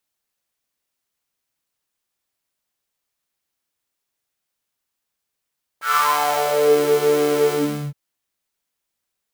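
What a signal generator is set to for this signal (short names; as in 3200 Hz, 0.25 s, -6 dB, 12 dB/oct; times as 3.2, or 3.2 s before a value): synth patch with pulse-width modulation D3, oscillator 2 square, interval +19 st, detune 25 cents, noise -9.5 dB, filter highpass, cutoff 130 Hz, Q 7.4, filter envelope 3.5 oct, filter decay 0.99 s, filter sustain 45%, attack 0.135 s, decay 0.64 s, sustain -5 dB, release 0.42 s, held 1.70 s, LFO 1.9 Hz, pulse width 39%, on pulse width 8%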